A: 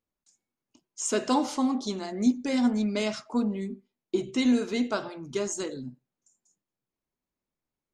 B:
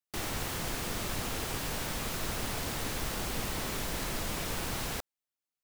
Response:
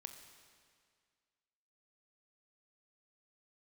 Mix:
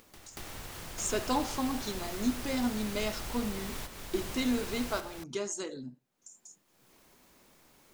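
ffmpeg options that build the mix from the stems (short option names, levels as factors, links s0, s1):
-filter_complex "[0:a]volume=0.668,asplit=2[s0][s1];[1:a]lowshelf=f=120:g=11,volume=0.501,asplit=2[s2][s3];[s3]volume=0.398[s4];[s1]apad=whole_len=248646[s5];[s2][s5]sidechaingate=range=0.0224:threshold=0.00224:ratio=16:detection=peak[s6];[s4]aecho=0:1:233:1[s7];[s0][s6][s7]amix=inputs=3:normalize=0,lowshelf=f=240:g=-8,acompressor=mode=upward:threshold=0.0178:ratio=2.5"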